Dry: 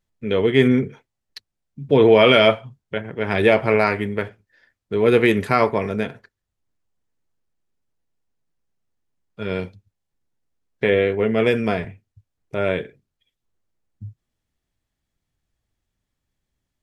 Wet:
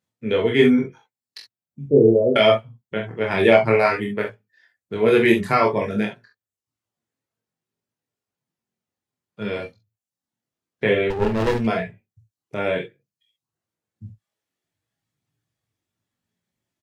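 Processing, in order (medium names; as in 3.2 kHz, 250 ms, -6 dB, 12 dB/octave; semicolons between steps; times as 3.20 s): high-pass 92 Hz 24 dB/octave; reverb removal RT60 0.6 s; 1.86–2.36 s: steep low-pass 520 Hz 36 dB/octave; early reflections 44 ms -6.5 dB, 61 ms -15.5 dB; chorus voices 6, 0.12 Hz, delay 23 ms, depth 4.7 ms; 11.10–11.67 s: sliding maximum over 33 samples; trim +3 dB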